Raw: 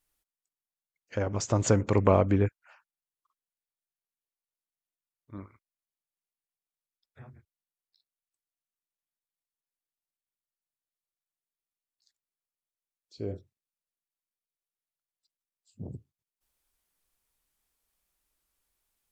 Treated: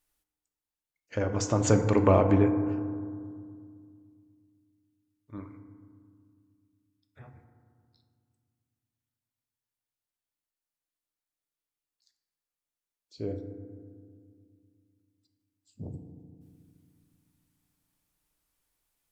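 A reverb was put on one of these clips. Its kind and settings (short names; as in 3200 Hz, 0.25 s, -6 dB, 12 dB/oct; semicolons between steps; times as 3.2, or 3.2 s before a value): FDN reverb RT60 2.1 s, low-frequency decay 1.45×, high-frequency decay 0.3×, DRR 6 dB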